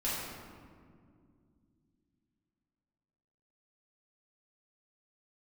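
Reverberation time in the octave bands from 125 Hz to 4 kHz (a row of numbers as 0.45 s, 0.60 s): 3.6 s, 3.7 s, 2.6 s, 1.9 s, 1.5 s, 1.0 s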